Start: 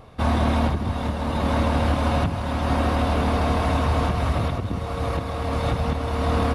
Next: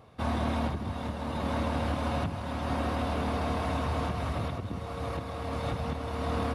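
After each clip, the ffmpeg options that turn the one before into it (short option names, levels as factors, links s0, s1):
-af "highpass=70,volume=0.398"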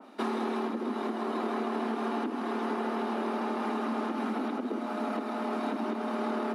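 -af "afreqshift=150,acompressor=threshold=0.0251:ratio=6,adynamicequalizer=threshold=0.00178:dfrequency=2600:dqfactor=0.7:tfrequency=2600:tqfactor=0.7:attack=5:release=100:ratio=0.375:range=3:mode=cutabove:tftype=highshelf,volume=1.58"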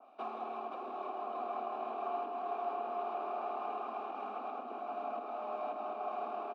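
-filter_complex "[0:a]asplit=3[s0][s1][s2];[s0]bandpass=f=730:t=q:w=8,volume=1[s3];[s1]bandpass=f=1090:t=q:w=8,volume=0.501[s4];[s2]bandpass=f=2440:t=q:w=8,volume=0.355[s5];[s3][s4][s5]amix=inputs=3:normalize=0,aecho=1:1:525:0.631,volume=1.26"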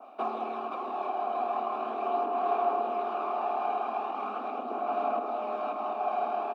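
-af "aphaser=in_gain=1:out_gain=1:delay=1.3:decay=0.27:speed=0.4:type=sinusoidal,volume=2.37"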